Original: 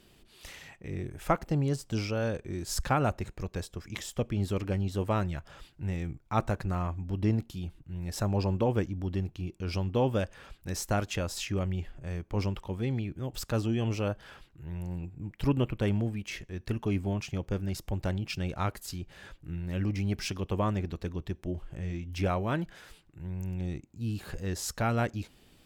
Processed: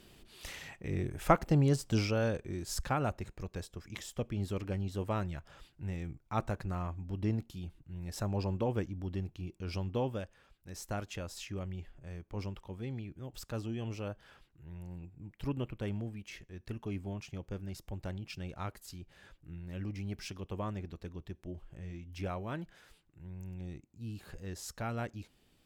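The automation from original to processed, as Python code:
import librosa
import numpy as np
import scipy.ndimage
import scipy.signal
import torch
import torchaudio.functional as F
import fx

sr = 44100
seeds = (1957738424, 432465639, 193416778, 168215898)

y = fx.gain(x, sr, db=fx.line((1.95, 1.5), (2.86, -5.5), (9.95, -5.5), (10.52, -16.0), (10.85, -9.0)))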